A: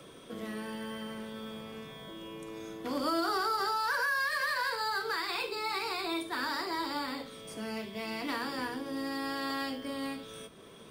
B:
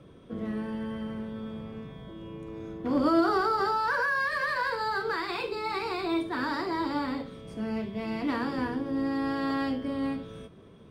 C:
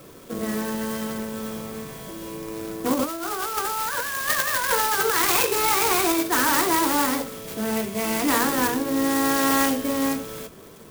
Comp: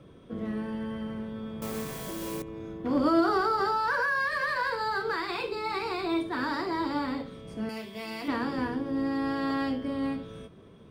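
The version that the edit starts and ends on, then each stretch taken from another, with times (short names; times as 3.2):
B
1.62–2.42 from C
7.69–8.28 from A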